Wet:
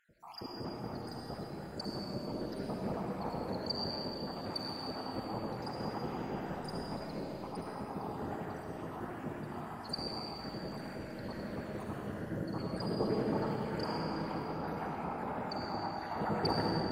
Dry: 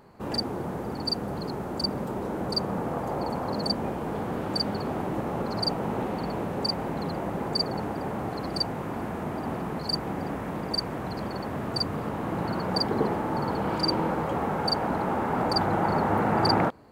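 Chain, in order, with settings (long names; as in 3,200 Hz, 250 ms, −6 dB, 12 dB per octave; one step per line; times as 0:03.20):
time-frequency cells dropped at random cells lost 69%
0:13.87–0:16.21: downward compressor, threshold −30 dBFS, peak gain reduction 8.5 dB
comb and all-pass reverb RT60 3.8 s, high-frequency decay 0.85×, pre-delay 25 ms, DRR −3.5 dB
level −8.5 dB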